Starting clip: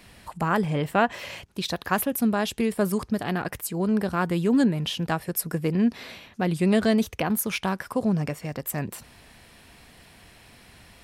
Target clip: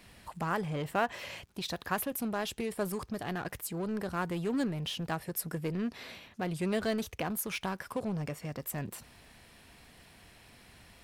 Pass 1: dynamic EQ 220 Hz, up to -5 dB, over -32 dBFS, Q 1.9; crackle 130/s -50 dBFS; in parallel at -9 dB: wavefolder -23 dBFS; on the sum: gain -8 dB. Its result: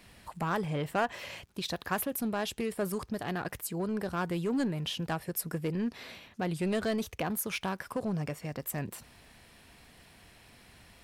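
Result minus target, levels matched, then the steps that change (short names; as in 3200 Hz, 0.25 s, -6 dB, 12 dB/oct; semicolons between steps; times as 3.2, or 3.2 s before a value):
wavefolder: distortion -15 dB
change: wavefolder -30 dBFS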